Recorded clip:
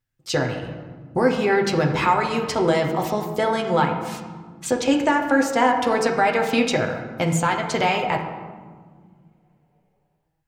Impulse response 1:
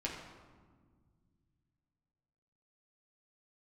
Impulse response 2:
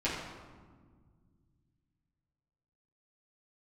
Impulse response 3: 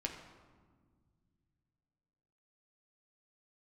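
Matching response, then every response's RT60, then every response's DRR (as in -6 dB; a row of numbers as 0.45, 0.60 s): 3; 1.6, 1.6, 1.7 s; -4.0, -10.0, 1.0 dB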